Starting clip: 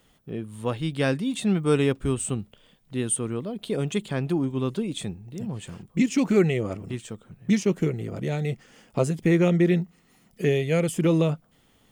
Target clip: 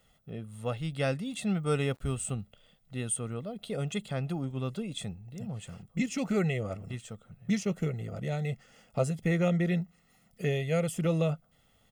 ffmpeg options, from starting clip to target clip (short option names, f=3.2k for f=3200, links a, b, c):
-filter_complex "[0:a]aecho=1:1:1.5:0.59,asettb=1/sr,asplit=3[a][b][c];[a]atrim=end=1.704[d];[b]atrim=start=1.7:end=2.33,asetpts=PTS-STARTPTS,afade=t=in:d=0.004:c=qsin,afade=t=out:st=0.626:d=0.004:c=qsin,aeval=exprs='val(0)*gte(abs(val(0)),0.00355)':c=same[e];[c]atrim=start=2.326[f];[d][e]acrossfade=d=0.004:c1=hsin:c2=qsin[g];[g][f]acrossfade=d=0.004:c1=qsin:c2=hsin,volume=-6.5dB"